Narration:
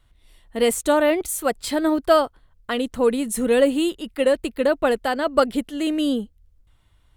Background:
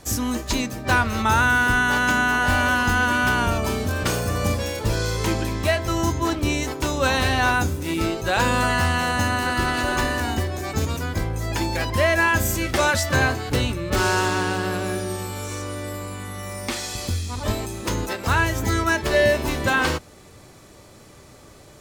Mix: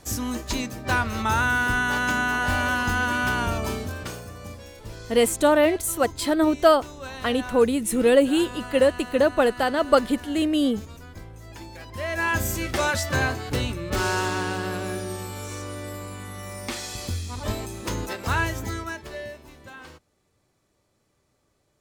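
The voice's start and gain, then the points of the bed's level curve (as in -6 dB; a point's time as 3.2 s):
4.55 s, 0.0 dB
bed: 3.71 s -4 dB
4.35 s -16.5 dB
11.85 s -16.5 dB
12.31 s -4 dB
18.46 s -4 dB
19.46 s -23 dB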